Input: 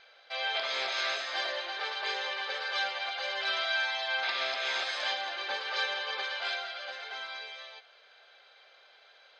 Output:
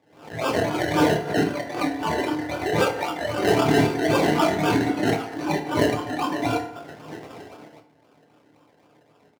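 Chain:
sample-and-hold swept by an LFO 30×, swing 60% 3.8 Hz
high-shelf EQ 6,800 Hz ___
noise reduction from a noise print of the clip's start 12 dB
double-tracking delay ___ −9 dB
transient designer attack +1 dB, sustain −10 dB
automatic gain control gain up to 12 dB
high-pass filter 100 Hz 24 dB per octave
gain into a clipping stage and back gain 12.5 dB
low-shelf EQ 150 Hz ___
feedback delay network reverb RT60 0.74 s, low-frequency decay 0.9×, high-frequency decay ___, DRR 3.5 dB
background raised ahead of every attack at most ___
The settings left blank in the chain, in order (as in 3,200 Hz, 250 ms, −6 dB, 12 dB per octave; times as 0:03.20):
−11 dB, 26 ms, −4.5 dB, 0.65×, 98 dB per second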